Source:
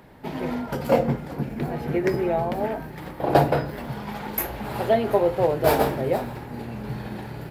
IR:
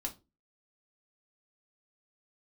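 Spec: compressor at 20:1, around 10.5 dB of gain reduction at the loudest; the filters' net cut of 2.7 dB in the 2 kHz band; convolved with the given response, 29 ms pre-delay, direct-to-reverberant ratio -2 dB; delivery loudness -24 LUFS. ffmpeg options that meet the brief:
-filter_complex "[0:a]equalizer=f=2000:t=o:g=-3.5,acompressor=threshold=0.0708:ratio=20,asplit=2[s0][s1];[1:a]atrim=start_sample=2205,adelay=29[s2];[s1][s2]afir=irnorm=-1:irlink=0,volume=1.26[s3];[s0][s3]amix=inputs=2:normalize=0,volume=1.19"

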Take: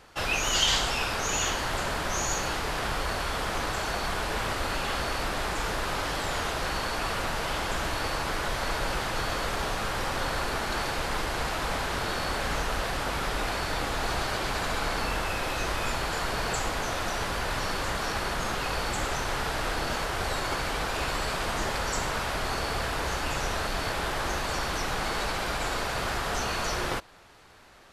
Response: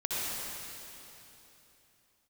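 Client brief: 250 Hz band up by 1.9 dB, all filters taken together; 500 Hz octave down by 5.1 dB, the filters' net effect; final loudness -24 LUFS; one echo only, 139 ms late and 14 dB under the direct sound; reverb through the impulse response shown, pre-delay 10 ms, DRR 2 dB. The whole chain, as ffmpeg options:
-filter_complex "[0:a]equalizer=f=250:t=o:g=5,equalizer=f=500:t=o:g=-8,aecho=1:1:139:0.2,asplit=2[s0][s1];[1:a]atrim=start_sample=2205,adelay=10[s2];[s1][s2]afir=irnorm=-1:irlink=0,volume=0.316[s3];[s0][s3]amix=inputs=2:normalize=0,volume=1.58"

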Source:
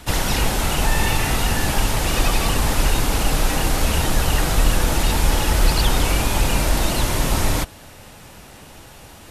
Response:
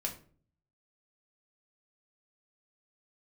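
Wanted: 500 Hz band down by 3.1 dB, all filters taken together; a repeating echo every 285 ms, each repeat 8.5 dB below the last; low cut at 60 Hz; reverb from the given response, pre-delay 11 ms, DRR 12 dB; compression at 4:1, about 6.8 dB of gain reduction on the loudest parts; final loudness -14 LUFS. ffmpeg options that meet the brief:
-filter_complex "[0:a]highpass=60,equalizer=f=500:t=o:g=-4,acompressor=threshold=0.0562:ratio=4,aecho=1:1:285|570|855|1140:0.376|0.143|0.0543|0.0206,asplit=2[s0][s1];[1:a]atrim=start_sample=2205,adelay=11[s2];[s1][s2]afir=irnorm=-1:irlink=0,volume=0.211[s3];[s0][s3]amix=inputs=2:normalize=0,volume=4.22"

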